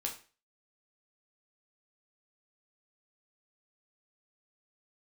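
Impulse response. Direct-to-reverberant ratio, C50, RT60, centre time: -0.5 dB, 9.5 dB, 0.35 s, 20 ms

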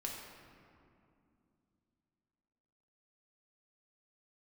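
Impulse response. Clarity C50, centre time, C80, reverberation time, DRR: 1.5 dB, 83 ms, 3.0 dB, 2.6 s, -2.0 dB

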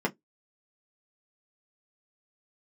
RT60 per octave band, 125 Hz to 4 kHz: 0.15 s, 0.15 s, 0.15 s, 0.10 s, 0.10 s, 0.10 s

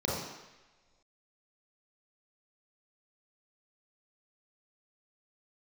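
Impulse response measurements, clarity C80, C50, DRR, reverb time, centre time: 3.0 dB, -0.5 dB, -5.5 dB, no single decay rate, 72 ms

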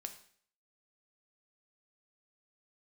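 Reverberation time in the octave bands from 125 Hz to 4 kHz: 0.55 s, 0.55 s, 0.55 s, 0.55 s, 0.55 s, 0.55 s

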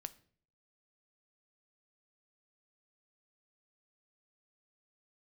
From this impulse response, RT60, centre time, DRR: 0.50 s, 3 ms, 12.5 dB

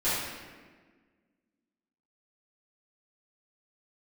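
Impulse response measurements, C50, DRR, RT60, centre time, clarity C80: -2.0 dB, -14.0 dB, 1.5 s, 98 ms, 1.0 dB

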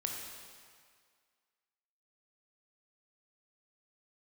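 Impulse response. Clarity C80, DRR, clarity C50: 3.0 dB, 0.0 dB, 2.0 dB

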